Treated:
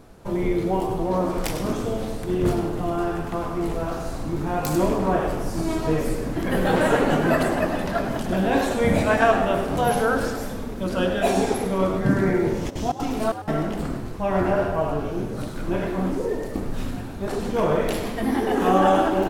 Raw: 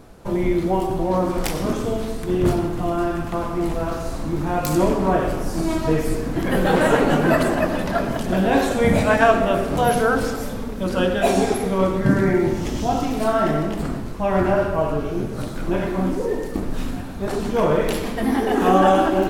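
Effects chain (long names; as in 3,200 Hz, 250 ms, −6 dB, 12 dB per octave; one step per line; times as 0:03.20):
0:12.69–0:13.51: gate pattern "xxxx..xx." 187 BPM −60 dB
echo with shifted repeats 101 ms, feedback 40%, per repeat +92 Hz, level −12 dB
level −3 dB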